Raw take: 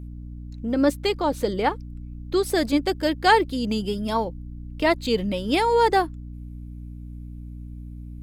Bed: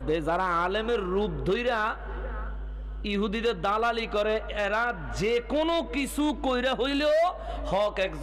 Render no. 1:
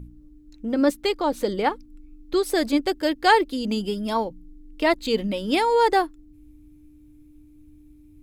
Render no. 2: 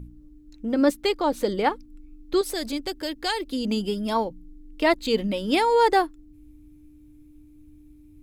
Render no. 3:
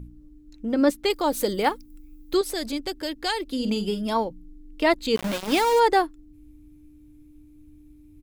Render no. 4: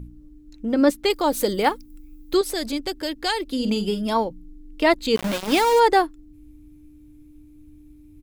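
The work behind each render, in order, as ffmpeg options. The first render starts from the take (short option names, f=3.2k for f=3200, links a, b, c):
-af "bandreject=f=60:t=h:w=4,bandreject=f=120:t=h:w=4,bandreject=f=180:t=h:w=4,bandreject=f=240:t=h:w=4"
-filter_complex "[0:a]asettb=1/sr,asplit=3[a][b][c];[a]atrim=end=2.414[d];[b]atrim=start=2.41:end=3.51,asetpts=PTS-STARTPTS,afade=t=in:d=0.004:c=qsin,afade=t=out:st=1.096:d=0.004:c=qsin,acrossover=split=130|3000[e][f][g];[f]acompressor=threshold=-31dB:ratio=2.5:attack=3.2:release=140:knee=2.83:detection=peak[h];[e][h][g]amix=inputs=3:normalize=0[i];[c]atrim=start=3.506[j];[d][i]acrossfade=d=0.004:c1=hsin:c2=qsin[k];[k][j]acrossfade=d=0.004:c1=qsin:c2=hsin"
-filter_complex "[0:a]asettb=1/sr,asplit=3[a][b][c];[a]atrim=end=1.104[d];[b]atrim=start=1.1:end=2.37,asetpts=PTS-STARTPTS,afade=t=in:d=0.004:c=qsin,afade=t=out:st=1.266:d=0.004:c=qsin,aemphasis=mode=production:type=50fm[e];[c]atrim=start=2.366[f];[d][e]acrossfade=d=0.004:c1=hsin:c2=qsin[g];[g][f]acrossfade=d=0.004:c1=qsin:c2=hsin,asplit=3[h][i][j];[h]afade=t=out:st=3.57:d=0.02[k];[i]asplit=2[l][m];[m]adelay=48,volume=-10dB[n];[l][n]amix=inputs=2:normalize=0,afade=t=in:st=3.57:d=0.02,afade=t=out:st=4.01:d=0.02[o];[j]afade=t=in:st=4.01:d=0.02[p];[k][o][p]amix=inputs=3:normalize=0,asplit=3[q][r][s];[q]afade=t=out:st=5.15:d=0.02[t];[r]aeval=exprs='val(0)*gte(abs(val(0)),0.0562)':c=same,afade=t=in:st=5.15:d=0.02,afade=t=out:st=5.79:d=0.02[u];[s]afade=t=in:st=5.79:d=0.02[v];[t][u][v]amix=inputs=3:normalize=0"
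-af "volume=2.5dB"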